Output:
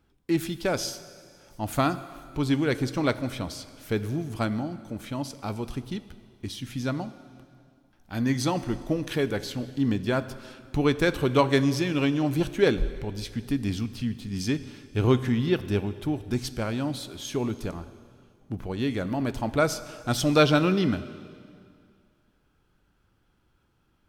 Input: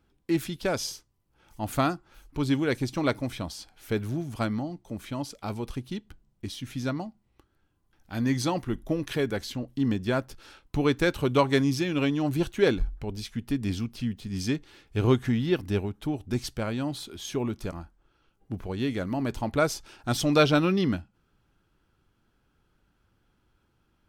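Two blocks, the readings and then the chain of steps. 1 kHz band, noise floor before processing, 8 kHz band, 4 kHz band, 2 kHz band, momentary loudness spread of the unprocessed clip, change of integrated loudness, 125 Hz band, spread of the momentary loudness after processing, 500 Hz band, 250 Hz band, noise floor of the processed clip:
+1.0 dB, -71 dBFS, +1.0 dB, +1.0 dB, +1.5 dB, 13 LU, +1.0 dB, +1.5 dB, 14 LU, +1.0 dB, +1.0 dB, -68 dBFS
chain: plate-style reverb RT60 2.2 s, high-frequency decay 0.95×, pre-delay 0 ms, DRR 13 dB; trim +1 dB

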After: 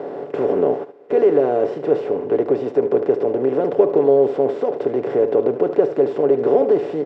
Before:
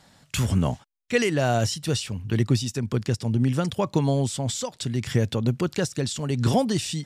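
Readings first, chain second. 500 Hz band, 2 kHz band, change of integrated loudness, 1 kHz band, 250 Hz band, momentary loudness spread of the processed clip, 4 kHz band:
+14.0 dB, no reading, +6.5 dB, +4.5 dB, +2.0 dB, 6 LU, under -15 dB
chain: spectral levelling over time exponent 0.4; comb 7 ms, depth 40%; in parallel at -0.5 dB: peak limiter -9.5 dBFS, peak gain reduction 7.5 dB; on the sum: ladder band-pass 450 Hz, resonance 65%; delay 74 ms -12 dB; trim +6 dB

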